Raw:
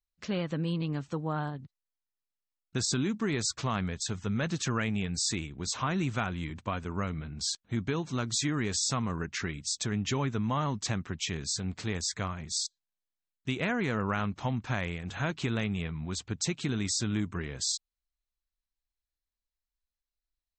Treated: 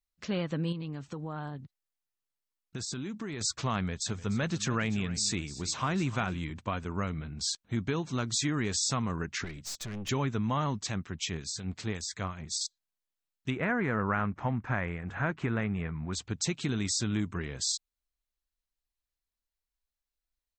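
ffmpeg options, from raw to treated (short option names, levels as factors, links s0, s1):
-filter_complex "[0:a]asettb=1/sr,asplit=3[s0][s1][s2];[s0]atrim=end=0.724[s3];[s1]atrim=start=0.72:end=3.41,asetpts=PTS-STARTPTS,afade=t=in:d=0.004:c=qsin,afade=t=out:st=2.686:d=0.004:c=qsin,acompressor=threshold=0.02:ratio=5:attack=3.2:release=140:knee=1:detection=peak[s4];[s2]atrim=start=3.406[s5];[s3][s4]acrossfade=d=0.004:c1=hsin:c2=qsin[s6];[s6][s5]acrossfade=d=0.004:c1=qsin:c2=hsin,asplit=3[s7][s8][s9];[s7]afade=t=out:st=4.06:d=0.02[s10];[s8]aecho=1:1:299|598:0.15|0.0269,afade=t=in:st=4.06:d=0.02,afade=t=out:st=6.38:d=0.02[s11];[s9]afade=t=in:st=6.38:d=0.02[s12];[s10][s11][s12]amix=inputs=3:normalize=0,asettb=1/sr,asplit=3[s13][s14][s15];[s13]atrim=end=9.444[s16];[s14]atrim=start=9.44:end=10.09,asetpts=PTS-STARTPTS,afade=t=in:d=0.004:c=qsin,afade=t=out:st=0.646:d=0.004:c=qsin,aeval=exprs='(tanh(56.2*val(0)+0.45)-tanh(0.45))/56.2':c=same[s17];[s15]atrim=start=10.086[s18];[s16][s17]acrossfade=d=0.004:c1=hsin:c2=qsin[s19];[s19][s18]acrossfade=d=0.004:c1=qsin:c2=hsin,asettb=1/sr,asplit=3[s20][s21][s22];[s20]atrim=end=10.804[s23];[s21]atrim=start=10.8:end=12.61,asetpts=PTS-STARTPTS,afade=t=in:d=0.004:c=qsin,afade=t=out:st=1.806:d=0.004:c=qsin,acrossover=split=1900[s24][s25];[s24]aeval=exprs='val(0)*(1-0.5/2+0.5/2*cos(2*PI*5.5*n/s))':c=same[s26];[s25]aeval=exprs='val(0)*(1-0.5/2-0.5/2*cos(2*PI*5.5*n/s))':c=same[s27];[s26][s27]amix=inputs=2:normalize=0[s28];[s22]atrim=start=12.606[s29];[s23][s28]acrossfade=d=0.004:c1=hsin:c2=qsin[s30];[s30][s29]acrossfade=d=0.004:c1=qsin:c2=hsin,asettb=1/sr,asplit=3[s31][s32][s33];[s31]atrim=end=13.504[s34];[s32]atrim=start=13.5:end=16.13,asetpts=PTS-STARTPTS,afade=t=in:d=0.004:c=qsin,afade=t=out:st=2.626:d=0.004:c=qsin,highshelf=f=2600:t=q:w=1.5:g=-12.5[s35];[s33]atrim=start=16.126[s36];[s34][s35]acrossfade=d=0.004:c1=hsin:c2=qsin[s37];[s37][s36]acrossfade=d=0.004:c1=qsin:c2=hsin"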